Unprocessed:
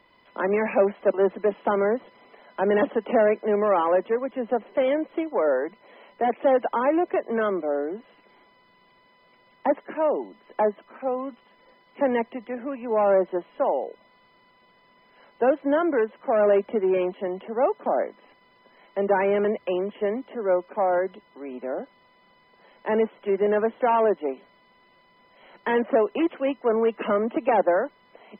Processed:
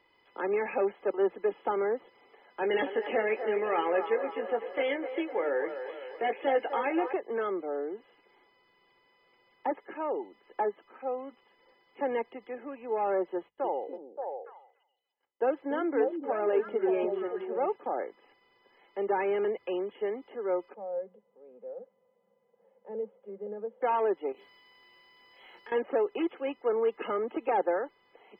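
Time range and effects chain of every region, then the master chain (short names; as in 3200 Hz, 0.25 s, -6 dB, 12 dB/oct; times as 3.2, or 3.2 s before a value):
2.61–7.13 resonant high shelf 1600 Hz +6.5 dB, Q 1.5 + doubler 18 ms -8 dB + band-limited delay 0.252 s, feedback 58%, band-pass 880 Hz, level -7.5 dB
13.35–17.76 gate -51 dBFS, range -31 dB + notches 50/100/150/200 Hz + delay with a stepping band-pass 0.288 s, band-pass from 230 Hz, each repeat 1.4 oct, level -1 dB
20.74–23.82 G.711 law mismatch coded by mu + double band-pass 320 Hz, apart 1.3 oct
24.32–25.72 high shelf 2500 Hz +11.5 dB + compressor 4:1, threshold -42 dBFS + doubler 25 ms -4.5 dB
whole clip: low shelf 99 Hz -8 dB; comb 2.4 ms, depth 54%; gain -8 dB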